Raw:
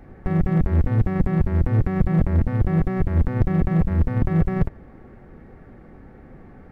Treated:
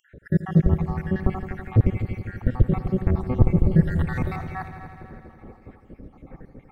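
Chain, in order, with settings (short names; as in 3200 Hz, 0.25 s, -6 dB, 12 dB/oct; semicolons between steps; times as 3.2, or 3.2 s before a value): random spectral dropouts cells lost 72%; 3.83–4.36 tilt shelf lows -10 dB, about 920 Hz; multi-head echo 82 ms, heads all three, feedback 63%, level -15 dB; gain +3.5 dB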